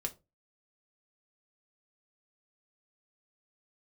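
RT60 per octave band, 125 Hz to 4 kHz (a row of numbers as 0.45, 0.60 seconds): 0.40, 0.30, 0.30, 0.25, 0.20, 0.15 seconds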